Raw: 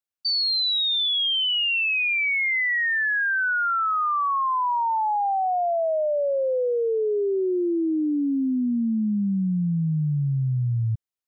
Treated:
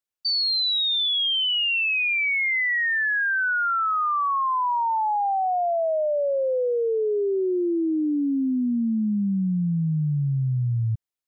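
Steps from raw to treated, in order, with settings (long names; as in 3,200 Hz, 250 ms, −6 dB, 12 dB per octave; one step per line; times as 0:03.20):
0:08.04–0:09.55: high-shelf EQ 3,200 Hz +8.5 dB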